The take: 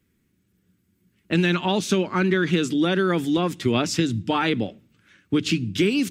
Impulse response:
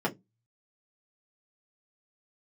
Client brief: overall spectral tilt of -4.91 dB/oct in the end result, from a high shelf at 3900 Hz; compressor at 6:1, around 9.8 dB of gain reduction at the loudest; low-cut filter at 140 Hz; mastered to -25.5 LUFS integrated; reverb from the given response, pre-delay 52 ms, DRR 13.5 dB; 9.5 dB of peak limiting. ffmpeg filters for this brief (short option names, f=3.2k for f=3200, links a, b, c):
-filter_complex "[0:a]highpass=140,highshelf=f=3.9k:g=-8,acompressor=threshold=-28dB:ratio=6,alimiter=level_in=1dB:limit=-24dB:level=0:latency=1,volume=-1dB,asplit=2[a][b];[1:a]atrim=start_sample=2205,adelay=52[c];[b][c]afir=irnorm=-1:irlink=0,volume=-22.5dB[d];[a][d]amix=inputs=2:normalize=0,volume=8.5dB"